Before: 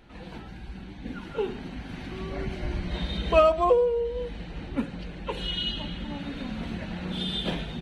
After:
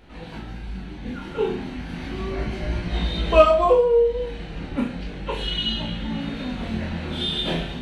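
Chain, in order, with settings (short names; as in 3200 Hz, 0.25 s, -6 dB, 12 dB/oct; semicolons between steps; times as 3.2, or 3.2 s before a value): chorus 0.34 Hz, delay 17.5 ms, depth 7.6 ms; flutter echo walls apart 6.2 m, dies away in 0.33 s; gain +7 dB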